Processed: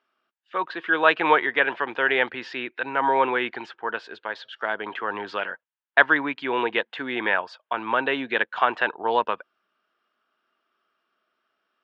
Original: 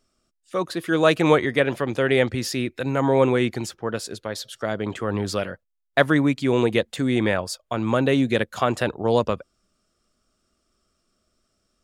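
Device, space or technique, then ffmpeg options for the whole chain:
phone earpiece: -af "highpass=500,equalizer=f=560:t=q:w=4:g=-6,equalizer=f=930:t=q:w=4:g=8,equalizer=f=1.6k:t=q:w=4:g=8,equalizer=f=2.9k:t=q:w=4:g=4,lowpass=f=3.3k:w=0.5412,lowpass=f=3.3k:w=1.3066"

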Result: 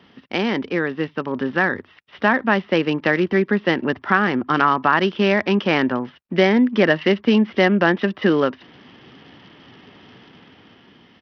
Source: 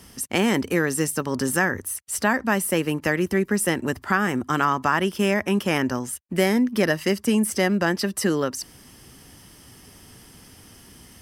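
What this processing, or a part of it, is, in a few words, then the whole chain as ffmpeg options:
Bluetooth headset: -af "highpass=170,dynaudnorm=f=600:g=5:m=8dB,aresample=8000,aresample=44100" -ar 44100 -c:a sbc -b:a 64k

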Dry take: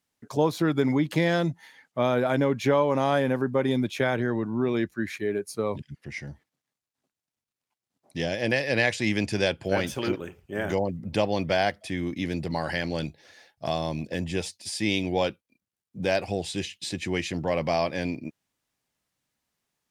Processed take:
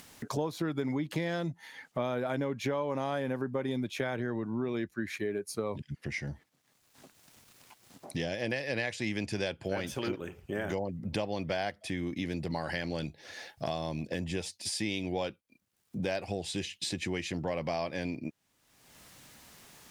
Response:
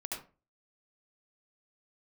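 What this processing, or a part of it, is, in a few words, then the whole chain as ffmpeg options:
upward and downward compression: -af "acompressor=mode=upward:threshold=-46dB:ratio=2.5,acompressor=threshold=-43dB:ratio=3,volume=7.5dB"

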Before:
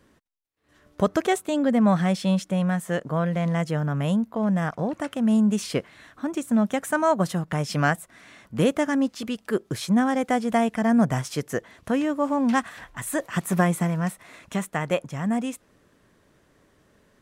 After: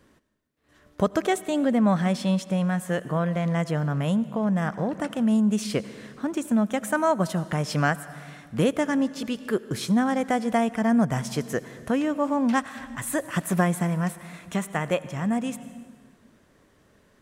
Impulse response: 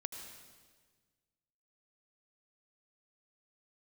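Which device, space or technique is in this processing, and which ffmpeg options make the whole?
ducked reverb: -filter_complex "[0:a]asplit=3[a][b][c];[1:a]atrim=start_sample=2205[d];[b][d]afir=irnorm=-1:irlink=0[e];[c]apad=whole_len=759299[f];[e][f]sidechaincompress=threshold=-24dB:ratio=8:attack=41:release=614,volume=-3dB[g];[a][g]amix=inputs=2:normalize=0,volume=-3dB"

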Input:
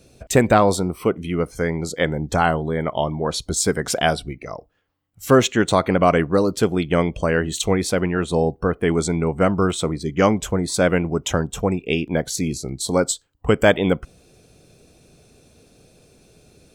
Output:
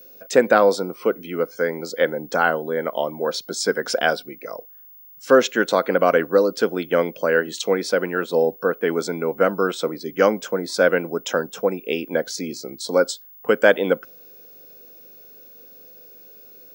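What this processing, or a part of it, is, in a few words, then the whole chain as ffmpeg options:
old television with a line whistle: -af "highpass=f=210:w=0.5412,highpass=f=210:w=1.3066,equalizer=f=510:t=q:w=4:g=9,equalizer=f=1.5k:t=q:w=4:g=9,equalizer=f=5.1k:t=q:w=4:g=7,equalizer=f=8k:t=q:w=4:g=-7,lowpass=f=9k:w=0.5412,lowpass=f=9k:w=1.3066,aeval=exprs='val(0)+0.0112*sin(2*PI*15625*n/s)':c=same,volume=-4dB"

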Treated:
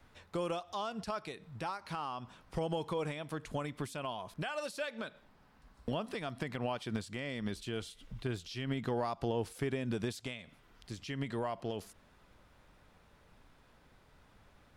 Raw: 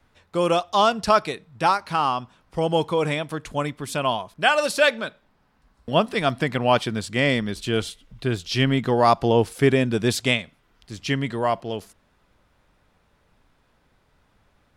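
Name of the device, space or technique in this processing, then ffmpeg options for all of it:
de-esser from a sidechain: -filter_complex "[0:a]asplit=2[a][b];[b]highpass=f=5.7k:p=1,apad=whole_len=651196[c];[a][c]sidechaincompress=threshold=-53dB:ratio=3:attack=1.6:release=85"

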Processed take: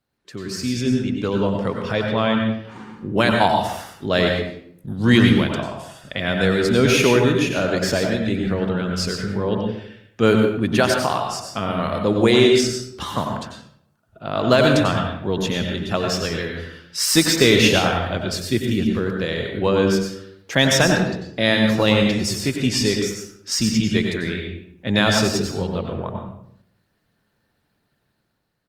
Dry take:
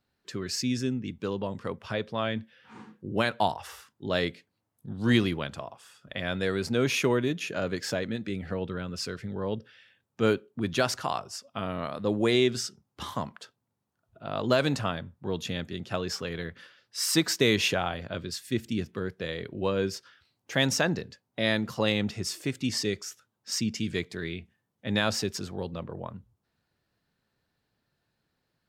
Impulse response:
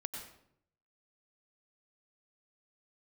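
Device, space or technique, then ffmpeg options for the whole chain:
speakerphone in a meeting room: -filter_complex "[1:a]atrim=start_sample=2205[a];[0:a][a]afir=irnorm=-1:irlink=0,asplit=2[b][c];[c]adelay=120,highpass=300,lowpass=3.4k,asoftclip=type=hard:threshold=-20dB,volume=-28dB[d];[b][d]amix=inputs=2:normalize=0,dynaudnorm=f=170:g=9:m=7dB,volume=4dB" -ar 48000 -c:a libopus -b:a 32k

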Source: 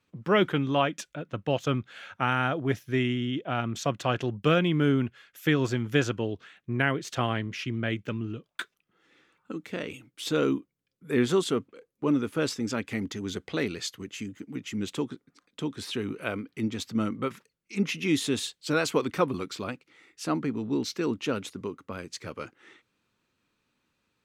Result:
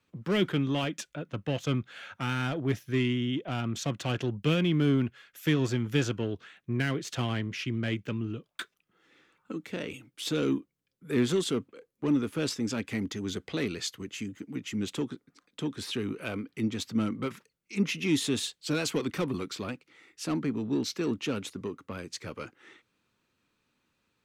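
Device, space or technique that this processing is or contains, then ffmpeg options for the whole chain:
one-band saturation: -filter_complex "[0:a]acrossover=split=380|2300[a][b][c];[b]asoftclip=type=tanh:threshold=-35dB[d];[a][d][c]amix=inputs=3:normalize=0"

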